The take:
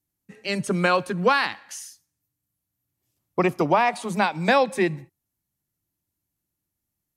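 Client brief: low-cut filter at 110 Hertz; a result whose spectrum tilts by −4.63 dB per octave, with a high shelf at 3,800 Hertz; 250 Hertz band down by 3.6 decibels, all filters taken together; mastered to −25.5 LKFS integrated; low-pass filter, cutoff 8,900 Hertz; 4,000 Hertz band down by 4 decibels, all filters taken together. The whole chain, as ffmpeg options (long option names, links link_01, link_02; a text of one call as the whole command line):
ffmpeg -i in.wav -af "highpass=110,lowpass=8900,equalizer=frequency=250:width_type=o:gain=-5.5,highshelf=frequency=3800:gain=4.5,equalizer=frequency=4000:width_type=o:gain=-7.5,volume=-1.5dB" out.wav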